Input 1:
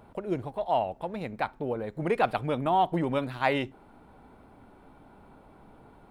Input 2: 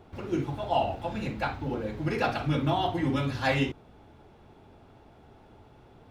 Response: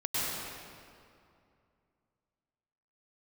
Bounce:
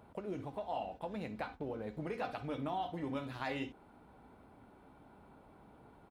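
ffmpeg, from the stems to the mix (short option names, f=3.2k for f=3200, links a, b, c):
-filter_complex "[0:a]acompressor=threshold=-32dB:ratio=6,volume=-5.5dB,asplit=2[a][b];[1:a]aecho=1:1:4:0.91,volume=-1,adelay=2.1,volume=-19.5dB[c];[b]apad=whole_len=269384[d];[c][d]sidechaingate=range=-33dB:threshold=-51dB:ratio=16:detection=peak[e];[a][e]amix=inputs=2:normalize=0,highpass=41"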